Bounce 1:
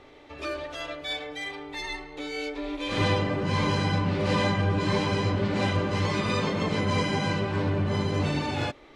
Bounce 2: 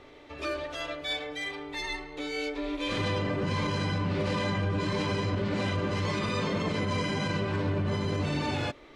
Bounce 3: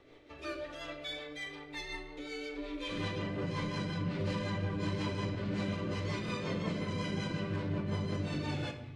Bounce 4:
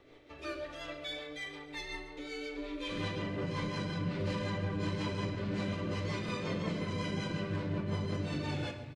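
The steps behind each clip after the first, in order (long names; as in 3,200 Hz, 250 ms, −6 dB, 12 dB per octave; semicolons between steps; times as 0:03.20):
notch filter 810 Hz, Q 12; brickwall limiter −21 dBFS, peak gain reduction 7.5 dB
rotating-speaker cabinet horn 5.5 Hz; rectangular room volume 450 cubic metres, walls mixed, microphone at 0.68 metres; level −6 dB
repeating echo 137 ms, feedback 53%, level −16 dB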